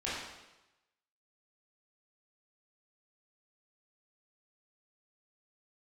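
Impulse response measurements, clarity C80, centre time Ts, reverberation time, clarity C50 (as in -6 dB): 2.5 dB, 78 ms, 1.0 s, -0.5 dB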